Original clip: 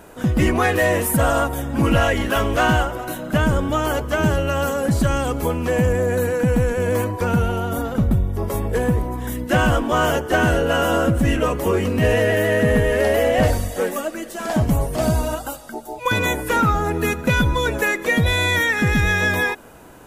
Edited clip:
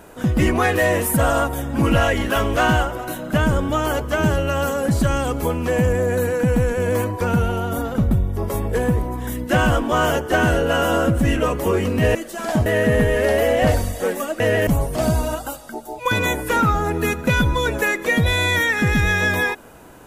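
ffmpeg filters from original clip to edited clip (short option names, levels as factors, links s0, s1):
-filter_complex "[0:a]asplit=5[s0][s1][s2][s3][s4];[s0]atrim=end=12.152[s5];[s1]atrim=start=14.158:end=14.672[s6];[s2]atrim=start=12.418:end=14.162[s7];[s3]atrim=start=12.148:end=12.422[s8];[s4]atrim=start=14.668[s9];[s5][s6]acrossfade=d=0.004:c1=hsin:c2=hsin[s10];[s10][s7]acrossfade=d=0.004:c1=hsin:c2=hsin[s11];[s11][s8]acrossfade=d=0.004:c1=hsin:c2=hsin[s12];[s12][s9]acrossfade=d=0.004:c1=hsin:c2=hsin"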